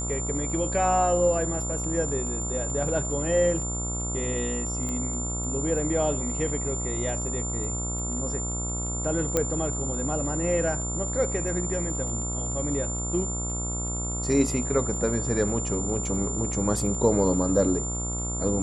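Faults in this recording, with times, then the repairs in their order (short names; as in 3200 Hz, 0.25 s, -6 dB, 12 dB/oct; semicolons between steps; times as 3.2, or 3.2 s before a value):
buzz 60 Hz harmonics 23 -32 dBFS
crackle 21/s -36 dBFS
tone 7200 Hz -31 dBFS
4.89 pop -20 dBFS
9.37 pop -9 dBFS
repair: de-click; de-hum 60 Hz, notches 23; notch 7200 Hz, Q 30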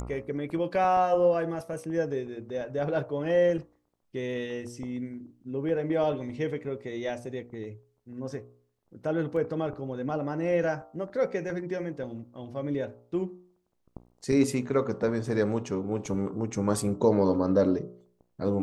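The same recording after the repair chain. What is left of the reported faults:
9.37 pop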